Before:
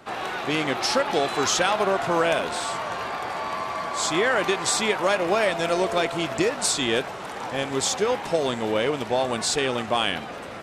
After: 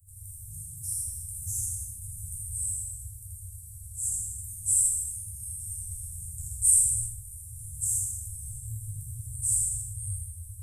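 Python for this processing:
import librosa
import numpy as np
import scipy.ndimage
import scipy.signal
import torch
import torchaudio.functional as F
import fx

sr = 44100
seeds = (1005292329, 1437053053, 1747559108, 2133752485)

p1 = scipy.signal.sosfilt(scipy.signal.cheby1(5, 1.0, [100.0, 8500.0], 'bandstop', fs=sr, output='sos'), x)
p2 = p1 + fx.echo_single(p1, sr, ms=81, db=-4.5, dry=0)
p3 = fx.rev_gated(p2, sr, seeds[0], gate_ms=360, shape='falling', drr_db=-6.5)
y = p3 * 10.0 ** (4.0 / 20.0)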